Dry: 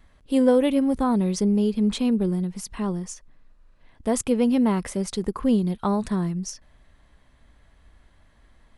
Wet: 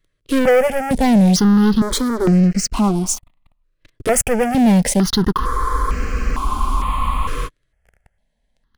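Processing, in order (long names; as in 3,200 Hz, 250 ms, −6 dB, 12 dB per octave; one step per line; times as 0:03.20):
leveller curve on the samples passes 5
frozen spectrum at 0:05.42, 2.04 s
step-sequenced phaser 2.2 Hz 220–3,500 Hz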